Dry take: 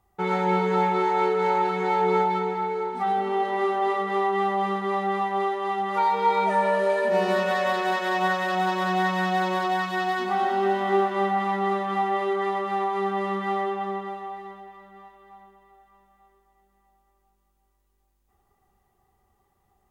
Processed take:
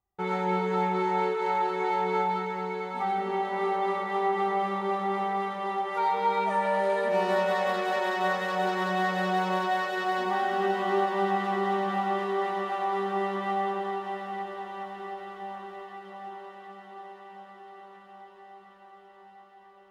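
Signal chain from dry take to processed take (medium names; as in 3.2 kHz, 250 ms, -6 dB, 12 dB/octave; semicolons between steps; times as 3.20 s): gate -57 dBFS, range -14 dB; echo that smears into a reverb 733 ms, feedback 74%, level -8.5 dB; endings held to a fixed fall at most 120 dB/s; trim -4.5 dB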